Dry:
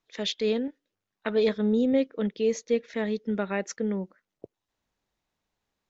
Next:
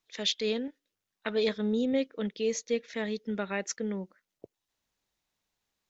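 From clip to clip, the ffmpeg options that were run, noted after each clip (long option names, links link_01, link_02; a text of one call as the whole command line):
ffmpeg -i in.wav -af "highshelf=frequency=2100:gain=9,volume=-5dB" out.wav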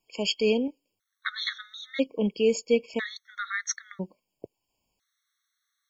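ffmpeg -i in.wav -af "afftfilt=real='re*gt(sin(2*PI*0.5*pts/sr)*(1-2*mod(floor(b*sr/1024/1100),2)),0)':imag='im*gt(sin(2*PI*0.5*pts/sr)*(1-2*mod(floor(b*sr/1024/1100),2)),0)':win_size=1024:overlap=0.75,volume=7dB" out.wav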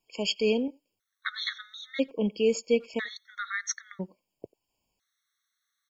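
ffmpeg -i in.wav -filter_complex "[0:a]asplit=2[link_01][link_02];[link_02]adelay=90,highpass=300,lowpass=3400,asoftclip=type=hard:threshold=-19.5dB,volume=-25dB[link_03];[link_01][link_03]amix=inputs=2:normalize=0,volume=-1.5dB" out.wav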